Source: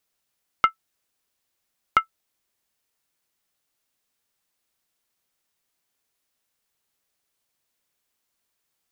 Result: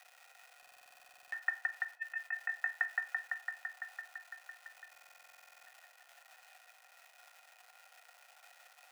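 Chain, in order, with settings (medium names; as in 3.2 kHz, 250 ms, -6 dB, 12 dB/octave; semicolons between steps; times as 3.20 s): steep high-pass 200 Hz; treble shelf 3.8 kHz -9.5 dB; crackle 450 per s -50 dBFS; bucket-brigade echo 168 ms, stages 2048, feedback 83%, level -14 dB; compressor with a negative ratio -38 dBFS, ratio -0.5; small resonant body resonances 260/940/1400/2000 Hz, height 15 dB, ringing for 35 ms; on a send at -10.5 dB: reverberation RT60 0.40 s, pre-delay 20 ms; on the sum: frequency shift +480 Hz; buffer glitch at 0.58/4.90 s, samples 2048, times 15; trim -6 dB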